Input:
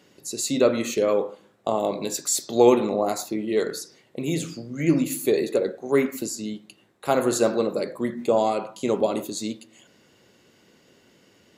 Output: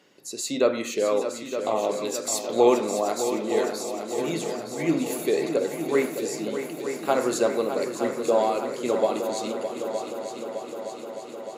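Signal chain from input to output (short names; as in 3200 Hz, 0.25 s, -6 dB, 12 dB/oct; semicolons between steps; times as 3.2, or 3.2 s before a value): HPF 370 Hz 6 dB/oct; high shelf 5100 Hz -5.5 dB; multi-head echo 0.305 s, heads second and third, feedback 69%, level -9.5 dB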